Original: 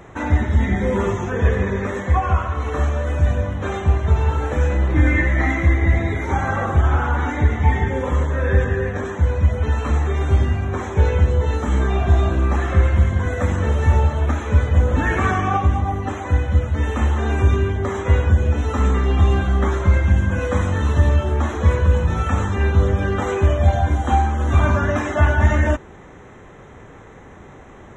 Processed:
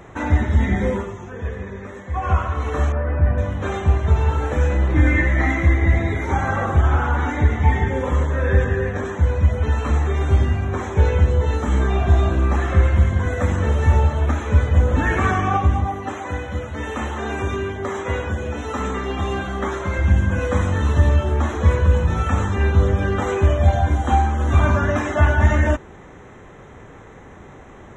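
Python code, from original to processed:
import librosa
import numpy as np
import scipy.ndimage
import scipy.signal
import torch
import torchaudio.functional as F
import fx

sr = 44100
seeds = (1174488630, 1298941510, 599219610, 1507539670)

y = fx.lowpass(x, sr, hz=2100.0, slope=24, at=(2.92, 3.38))
y = fx.highpass(y, sr, hz=270.0, slope=6, at=(15.87, 19.99))
y = fx.edit(y, sr, fx.fade_down_up(start_s=0.87, length_s=1.44, db=-10.5, fade_s=0.19), tone=tone)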